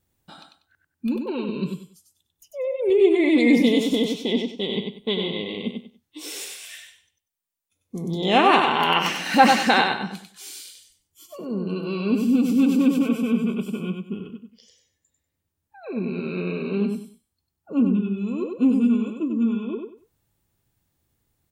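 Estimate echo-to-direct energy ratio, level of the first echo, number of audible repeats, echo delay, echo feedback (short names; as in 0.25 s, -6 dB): -4.5 dB, -5.0 dB, 3, 96 ms, 24%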